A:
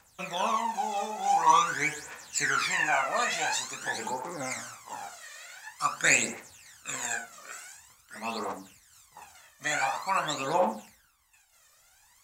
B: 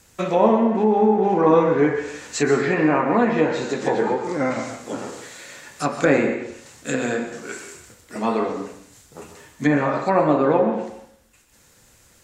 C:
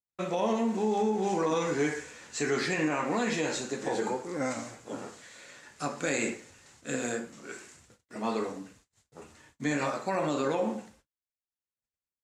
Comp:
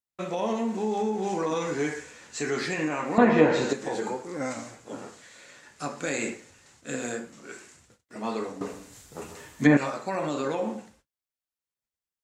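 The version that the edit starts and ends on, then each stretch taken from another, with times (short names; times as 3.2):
C
3.18–3.73 from B
8.61–9.77 from B
not used: A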